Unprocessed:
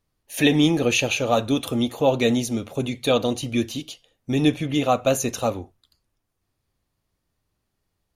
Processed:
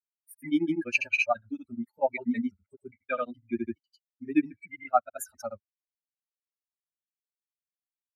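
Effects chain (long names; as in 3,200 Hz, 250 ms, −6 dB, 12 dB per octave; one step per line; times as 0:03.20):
spectral dynamics exaggerated over time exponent 3
high-pass filter 100 Hz
parametric band 2,000 Hz +15 dB 1.6 octaves
granular cloud 100 ms, grains 12 per second, spray 100 ms, pitch spread up and down by 0 semitones
parametric band 6,700 Hz −5.5 dB 0.34 octaves
phaser with its sweep stopped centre 690 Hz, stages 8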